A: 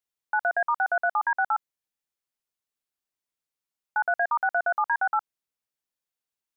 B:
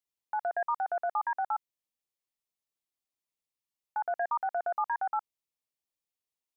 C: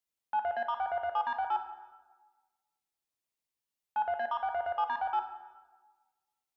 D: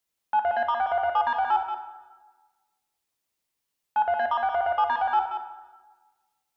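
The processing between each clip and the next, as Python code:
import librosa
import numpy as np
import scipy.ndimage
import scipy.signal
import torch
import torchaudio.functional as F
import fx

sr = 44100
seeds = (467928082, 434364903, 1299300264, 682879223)

y1 = fx.peak_eq(x, sr, hz=1500.0, db=-14.5, octaves=0.26)
y1 = F.gain(torch.from_numpy(y1), -3.5).numpy()
y2 = 10.0 ** (-24.5 / 20.0) * np.tanh(y1 / 10.0 ** (-24.5 / 20.0))
y2 = fx.rev_plate(y2, sr, seeds[0], rt60_s=1.3, hf_ratio=0.65, predelay_ms=0, drr_db=6.0)
y3 = y2 + 10.0 ** (-7.5 / 20.0) * np.pad(y2, (int(181 * sr / 1000.0), 0))[:len(y2)]
y3 = F.gain(torch.from_numpy(y3), 7.5).numpy()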